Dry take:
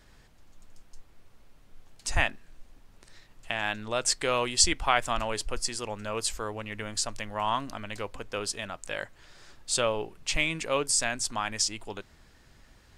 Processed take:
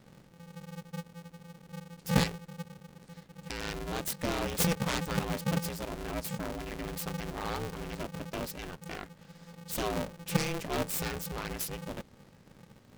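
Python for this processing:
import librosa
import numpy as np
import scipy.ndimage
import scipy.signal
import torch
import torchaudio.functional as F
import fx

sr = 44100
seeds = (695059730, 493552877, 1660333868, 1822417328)

y = fx.self_delay(x, sr, depth_ms=0.26)
y = fx.low_shelf_res(y, sr, hz=480.0, db=8.0, q=1.5)
y = y * np.sign(np.sin(2.0 * np.pi * 170.0 * np.arange(len(y)) / sr))
y = y * librosa.db_to_amplitude(-7.5)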